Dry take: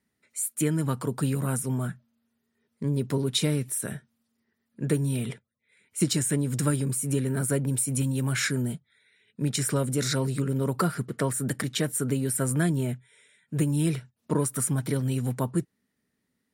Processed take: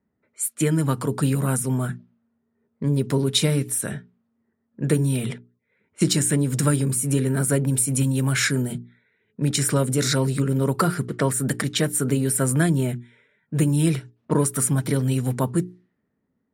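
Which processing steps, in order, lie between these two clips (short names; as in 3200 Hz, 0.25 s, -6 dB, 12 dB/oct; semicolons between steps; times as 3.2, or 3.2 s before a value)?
low-pass opened by the level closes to 1000 Hz, open at -25.5 dBFS; notches 60/120/180/240/300/360/420 Hz; gain +5.5 dB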